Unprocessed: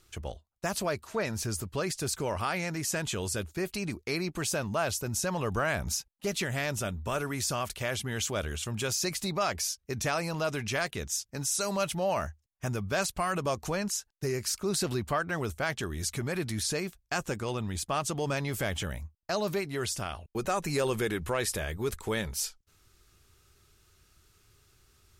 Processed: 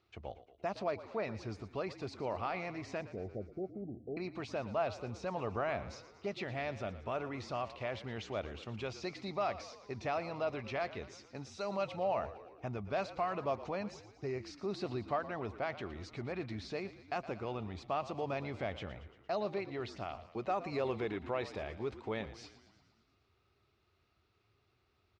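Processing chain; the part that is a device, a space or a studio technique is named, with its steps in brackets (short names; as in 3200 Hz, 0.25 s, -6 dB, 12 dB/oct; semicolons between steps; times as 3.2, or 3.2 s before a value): 3.01–4.17 Chebyshev low-pass 780 Hz, order 8; frequency-shifting delay pedal into a guitar cabinet (frequency-shifting echo 0.115 s, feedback 62%, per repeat -49 Hz, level -14.5 dB; speaker cabinet 95–3800 Hz, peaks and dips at 160 Hz -7 dB, 710 Hz +6 dB, 1600 Hz -7 dB, 3200 Hz -6 dB); gain -6.5 dB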